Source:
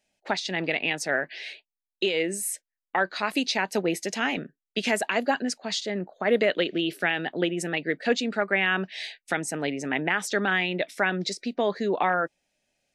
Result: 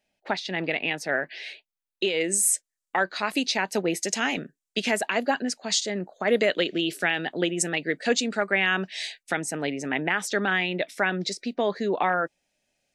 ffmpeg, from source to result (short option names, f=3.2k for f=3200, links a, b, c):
-af "asetnsamples=n=441:p=0,asendcmd='1.24 equalizer g -0.5;2.21 equalizer g 11.5;3.04 equalizer g 3;4.03 equalizer g 10.5;4.8 equalizer g 1;5.58 equalizer g 11.5;9.23 equalizer g 1',equalizer=f=7.6k:t=o:w=1.1:g=-7.5"